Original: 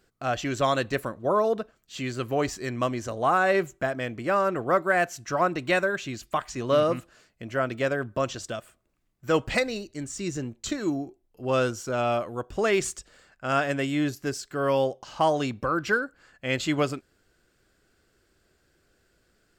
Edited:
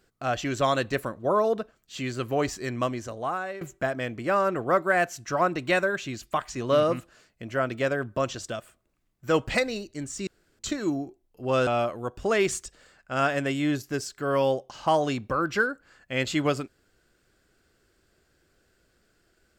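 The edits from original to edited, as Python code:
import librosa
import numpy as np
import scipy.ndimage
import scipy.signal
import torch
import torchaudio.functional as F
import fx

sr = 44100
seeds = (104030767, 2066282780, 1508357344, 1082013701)

y = fx.edit(x, sr, fx.fade_out_to(start_s=2.77, length_s=0.84, floor_db=-19.0),
    fx.room_tone_fill(start_s=10.27, length_s=0.32),
    fx.cut(start_s=11.67, length_s=0.33), tone=tone)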